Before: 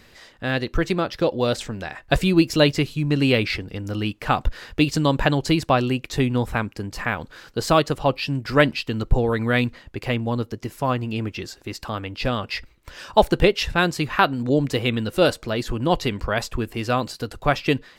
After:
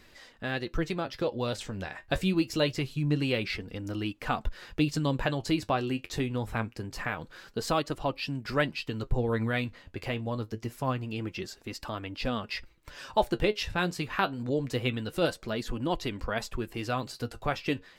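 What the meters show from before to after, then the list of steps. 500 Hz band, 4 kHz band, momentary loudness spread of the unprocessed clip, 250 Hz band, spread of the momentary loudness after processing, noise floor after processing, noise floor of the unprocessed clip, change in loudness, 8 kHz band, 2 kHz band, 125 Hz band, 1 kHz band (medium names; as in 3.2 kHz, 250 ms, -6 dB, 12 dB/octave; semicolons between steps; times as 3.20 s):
-9.5 dB, -9.0 dB, 12 LU, -8.5 dB, 9 LU, -58 dBFS, -53 dBFS, -9.0 dB, -8.0 dB, -9.0 dB, -8.5 dB, -9.0 dB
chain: in parallel at 0 dB: compression, threshold -26 dBFS, peak gain reduction 16 dB; on the sum: flange 0.25 Hz, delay 2.8 ms, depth 8.7 ms, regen +57%; trim -7.5 dB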